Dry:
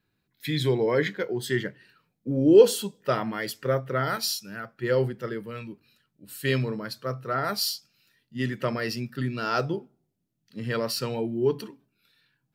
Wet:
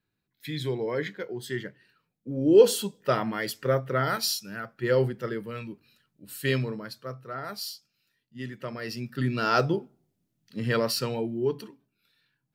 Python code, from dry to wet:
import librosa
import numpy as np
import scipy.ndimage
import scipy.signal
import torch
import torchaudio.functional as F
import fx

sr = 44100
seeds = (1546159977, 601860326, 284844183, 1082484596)

y = fx.gain(x, sr, db=fx.line((2.31, -6.0), (2.71, 0.5), (6.37, 0.5), (7.3, -8.5), (8.7, -8.5), (9.31, 3.0), (10.74, 3.0), (11.57, -4.0)))